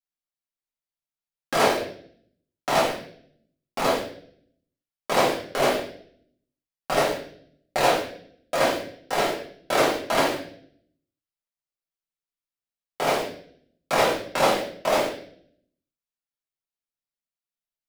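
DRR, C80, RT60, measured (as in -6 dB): -6.0 dB, 9.0 dB, 0.60 s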